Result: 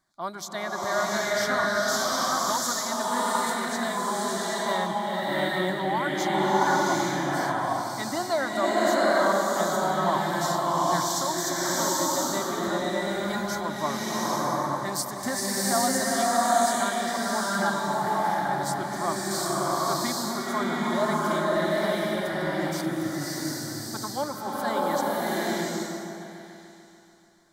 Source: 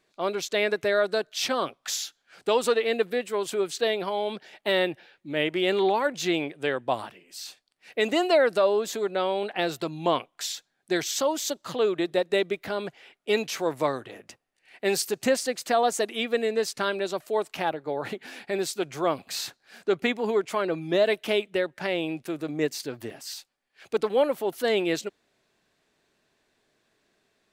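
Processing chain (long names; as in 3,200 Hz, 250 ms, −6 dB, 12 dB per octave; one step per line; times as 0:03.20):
phaser with its sweep stopped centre 1,100 Hz, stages 4
echo whose low-pass opens from repeat to repeat 146 ms, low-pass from 200 Hz, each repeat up 1 octave, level −6 dB
slow-attack reverb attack 800 ms, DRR −7 dB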